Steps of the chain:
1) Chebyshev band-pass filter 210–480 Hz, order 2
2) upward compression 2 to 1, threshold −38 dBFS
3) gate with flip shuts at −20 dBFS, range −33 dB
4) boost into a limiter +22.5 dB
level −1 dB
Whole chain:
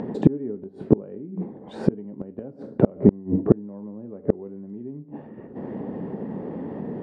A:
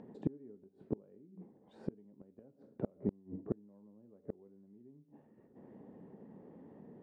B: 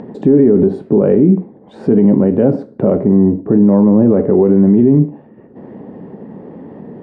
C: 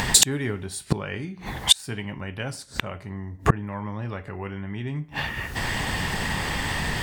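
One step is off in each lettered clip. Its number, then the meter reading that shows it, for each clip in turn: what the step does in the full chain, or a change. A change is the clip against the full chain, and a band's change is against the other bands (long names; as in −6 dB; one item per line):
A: 4, change in crest factor +3.0 dB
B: 3, change in momentary loudness spread −11 LU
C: 1, 1 kHz band +18.0 dB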